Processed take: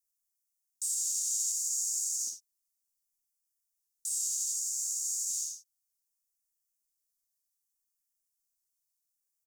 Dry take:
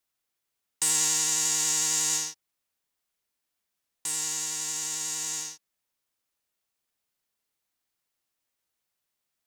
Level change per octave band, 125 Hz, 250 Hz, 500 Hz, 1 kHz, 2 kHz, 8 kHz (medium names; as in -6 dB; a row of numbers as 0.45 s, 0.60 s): under -35 dB, under -30 dB, under -35 dB, under -40 dB, under -35 dB, -4.5 dB